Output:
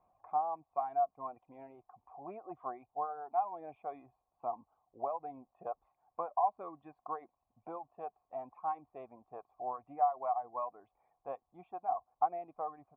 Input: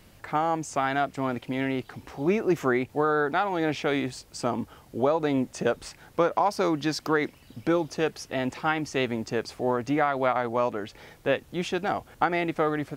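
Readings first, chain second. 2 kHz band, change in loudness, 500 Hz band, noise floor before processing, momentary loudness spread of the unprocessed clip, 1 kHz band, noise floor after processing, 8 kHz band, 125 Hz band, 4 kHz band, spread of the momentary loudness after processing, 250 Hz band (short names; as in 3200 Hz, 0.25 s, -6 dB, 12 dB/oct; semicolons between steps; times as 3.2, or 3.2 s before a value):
under -30 dB, -11.5 dB, -15.5 dB, -54 dBFS, 7 LU, -6.5 dB, -85 dBFS, under -35 dB, -30.0 dB, under -40 dB, 18 LU, -27.5 dB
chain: reverb removal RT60 1.5 s; vocal tract filter a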